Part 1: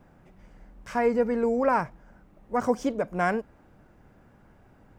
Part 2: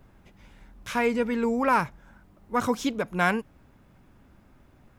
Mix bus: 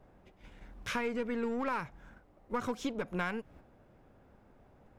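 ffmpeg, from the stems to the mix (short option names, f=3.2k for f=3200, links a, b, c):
-filter_complex "[0:a]equalizer=f=550:t=o:w=2.1:g=12.5,aeval=exprs='(tanh(10*val(0)+0.65)-tanh(0.65))/10':c=same,volume=-11dB[a];[1:a]agate=range=-8dB:threshold=-51dB:ratio=16:detection=peak,highshelf=f=6.7k:g=-9,volume=-1,volume=0.5dB[b];[a][b]amix=inputs=2:normalize=0,acompressor=threshold=-32dB:ratio=5"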